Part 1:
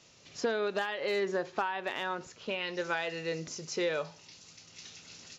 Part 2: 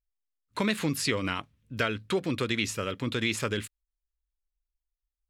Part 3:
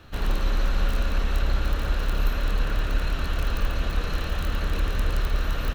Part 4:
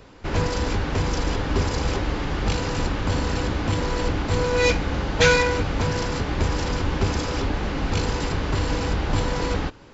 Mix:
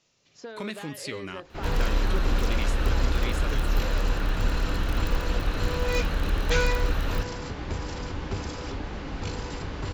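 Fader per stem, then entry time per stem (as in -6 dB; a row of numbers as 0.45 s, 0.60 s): -9.5 dB, -8.0 dB, -1.5 dB, -9.0 dB; 0.00 s, 0.00 s, 1.50 s, 1.30 s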